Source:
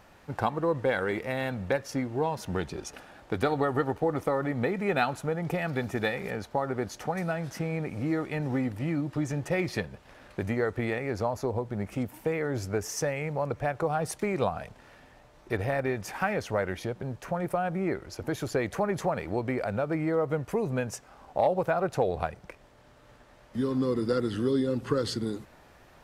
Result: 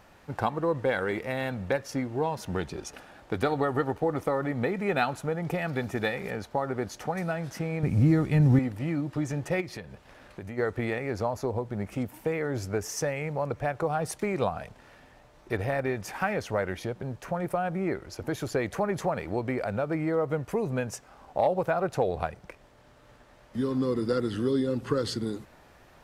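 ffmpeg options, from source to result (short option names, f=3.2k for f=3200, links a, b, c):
-filter_complex "[0:a]asettb=1/sr,asplit=3[a][b][c];[a]atrim=end=7.834[d];[b]atrim=start=7.83:end=8.59,asetpts=PTS-STARTPTS,afade=t=in:d=0.004:c=qsin,afade=t=out:st=0.756:d=0.004:c=qsin,bass=f=250:g=15,treble=f=4k:g=5[e];[c]atrim=start=8.586[f];[d][e]acrossfade=d=0.004:c1=hsin:c2=qsin[g];[g][f]acrossfade=d=0.004:c1=qsin:c2=hsin,asplit=3[h][i][j];[h]afade=t=out:st=9.6:d=0.02[k];[i]acompressor=threshold=-39dB:ratio=2.5:attack=3.2:release=140:knee=1:detection=peak,afade=t=in:st=9.6:d=0.02,afade=t=out:st=10.57:d=0.02[l];[j]afade=t=in:st=10.57:d=0.02[m];[k][l][m]amix=inputs=3:normalize=0"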